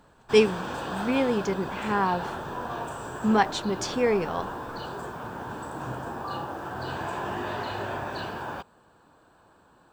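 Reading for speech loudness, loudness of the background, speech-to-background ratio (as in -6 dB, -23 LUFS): -26.0 LUFS, -34.5 LUFS, 8.5 dB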